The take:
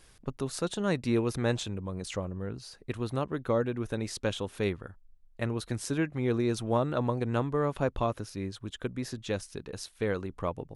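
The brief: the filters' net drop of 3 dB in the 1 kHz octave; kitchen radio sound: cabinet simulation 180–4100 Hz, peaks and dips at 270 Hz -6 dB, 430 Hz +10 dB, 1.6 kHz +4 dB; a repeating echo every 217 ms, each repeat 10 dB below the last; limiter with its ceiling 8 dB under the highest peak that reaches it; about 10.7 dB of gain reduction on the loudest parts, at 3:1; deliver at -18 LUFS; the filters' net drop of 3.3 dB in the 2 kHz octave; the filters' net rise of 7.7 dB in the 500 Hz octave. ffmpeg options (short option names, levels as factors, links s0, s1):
-af "equalizer=f=500:t=o:g=4,equalizer=f=1000:t=o:g=-4.5,equalizer=f=2000:t=o:g=-6.5,acompressor=threshold=0.0141:ratio=3,alimiter=level_in=2.11:limit=0.0631:level=0:latency=1,volume=0.473,highpass=180,equalizer=f=270:t=q:w=4:g=-6,equalizer=f=430:t=q:w=4:g=10,equalizer=f=1600:t=q:w=4:g=4,lowpass=f=4100:w=0.5412,lowpass=f=4100:w=1.3066,aecho=1:1:217|434|651|868:0.316|0.101|0.0324|0.0104,volume=11.2"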